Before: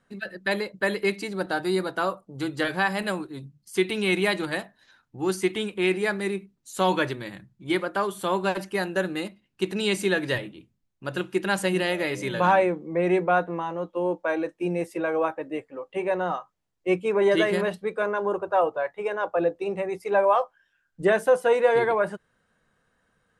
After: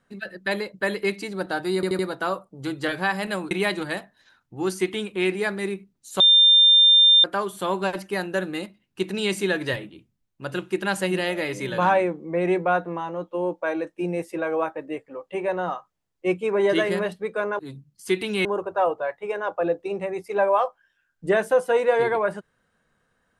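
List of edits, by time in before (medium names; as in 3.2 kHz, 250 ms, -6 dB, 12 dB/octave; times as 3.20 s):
1.75 s: stutter 0.08 s, 4 plays
3.27–4.13 s: move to 18.21 s
6.82–7.86 s: bleep 3.6 kHz -11 dBFS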